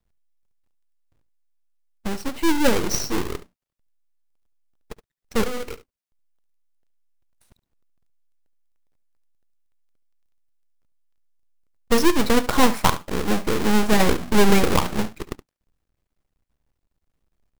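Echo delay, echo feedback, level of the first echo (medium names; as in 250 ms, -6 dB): 71 ms, no regular repeats, -15.5 dB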